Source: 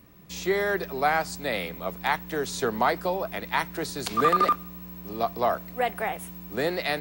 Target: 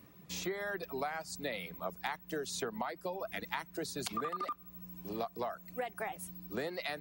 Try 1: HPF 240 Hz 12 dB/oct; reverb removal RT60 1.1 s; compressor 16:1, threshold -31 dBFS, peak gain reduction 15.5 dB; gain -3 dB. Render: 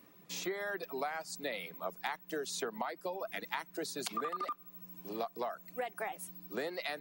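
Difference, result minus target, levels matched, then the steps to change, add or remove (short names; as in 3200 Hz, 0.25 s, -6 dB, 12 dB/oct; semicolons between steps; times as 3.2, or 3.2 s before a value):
125 Hz band -6.5 dB
change: HPF 75 Hz 12 dB/oct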